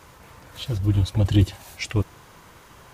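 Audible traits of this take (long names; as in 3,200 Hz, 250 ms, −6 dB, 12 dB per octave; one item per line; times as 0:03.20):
background noise floor −50 dBFS
spectral slope −7.0 dB per octave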